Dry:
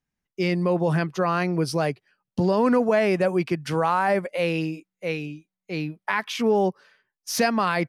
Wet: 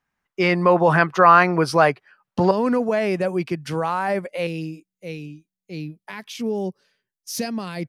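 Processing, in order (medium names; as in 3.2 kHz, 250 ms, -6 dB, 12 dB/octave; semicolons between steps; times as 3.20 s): peaking EQ 1.2 kHz +14.5 dB 2.3 oct, from 2.51 s -2 dB, from 4.47 s -14 dB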